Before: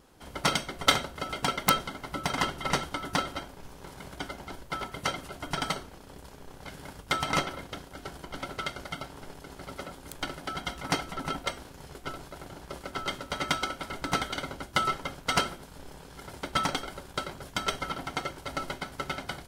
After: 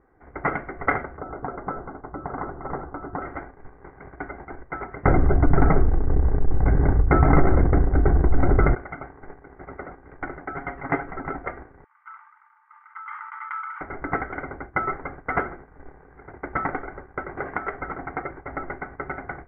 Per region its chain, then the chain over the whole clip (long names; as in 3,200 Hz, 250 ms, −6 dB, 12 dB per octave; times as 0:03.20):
0:01.17–0:03.22: low-pass filter 1,300 Hz 24 dB per octave + downward compressor 2 to 1, threshold −31 dBFS
0:05.05–0:08.75: downward expander −43 dBFS + spectral tilt −4.5 dB per octave + envelope flattener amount 70%
0:10.54–0:11.11: high-shelf EQ 4,000 Hz +5 dB + comb filter 7.3 ms, depth 54%
0:11.84–0:13.81: Chebyshev high-pass with heavy ripple 860 Hz, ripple 9 dB + level that may fall only so fast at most 38 dB per second
0:17.37–0:17.78: low-shelf EQ 230 Hz −7.5 dB + multiband upward and downward compressor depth 100%
whole clip: noise gate −43 dBFS, range −6 dB; Chebyshev low-pass filter 2,100 Hz, order 6; comb filter 2.6 ms, depth 39%; level +4 dB